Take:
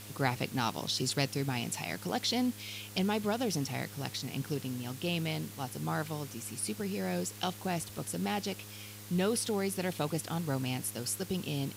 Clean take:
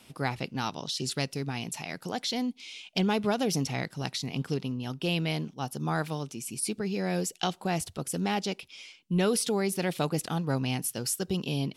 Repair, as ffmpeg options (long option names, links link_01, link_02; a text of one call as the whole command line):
ffmpeg -i in.wav -af "bandreject=frequency=103.8:width_type=h:width=4,bandreject=frequency=207.6:width_type=h:width=4,bandreject=frequency=311.4:width_type=h:width=4,bandreject=frequency=415.2:width_type=h:width=4,bandreject=frequency=519:width_type=h:width=4,afwtdn=0.0035,asetnsamples=nb_out_samples=441:pad=0,asendcmd='2.86 volume volume 4.5dB',volume=0dB" out.wav